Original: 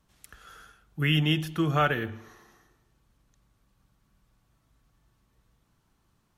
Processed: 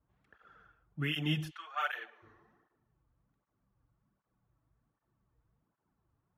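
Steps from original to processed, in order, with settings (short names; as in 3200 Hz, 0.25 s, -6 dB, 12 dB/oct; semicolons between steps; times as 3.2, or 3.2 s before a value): 1.49–2.22 HPF 1100 Hz -> 500 Hz 24 dB/oct; low-pass opened by the level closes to 1400 Hz, open at -22.5 dBFS; tape flanging out of phase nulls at 1.3 Hz, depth 5.6 ms; gain -5 dB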